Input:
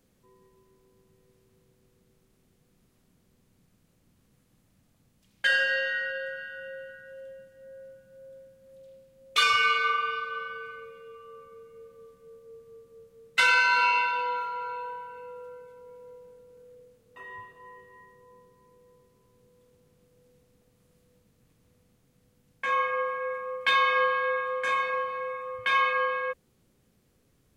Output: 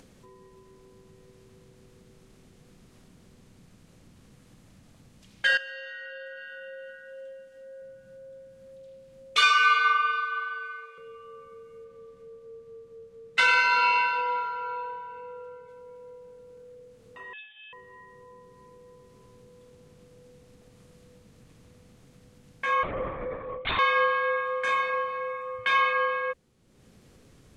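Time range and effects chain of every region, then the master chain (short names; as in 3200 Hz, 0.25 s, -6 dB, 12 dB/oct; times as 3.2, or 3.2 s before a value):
5.57–7.82 low shelf 370 Hz -9 dB + comb 3.9 ms, depth 51% + compressor 5:1, threshold -39 dBFS
9.41–10.98 HPF 580 Hz 24 dB/oct + high shelf 10000 Hz -6 dB + doubler 16 ms -3 dB
11.84–15.69 high shelf 6400 Hz -6.5 dB + split-band echo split 1300 Hz, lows 0.239 s, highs 0.104 s, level -14 dB
17.33–17.73 air absorption 450 m + notch 2600 Hz, Q 21 + inverted band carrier 3600 Hz
22.83–23.79 bell 1500 Hz -11.5 dB 1.3 oct + LPC vocoder at 8 kHz whisper
whole clip: LPF 9000 Hz 12 dB/oct; upward compressor, threshold -45 dBFS; gain +1 dB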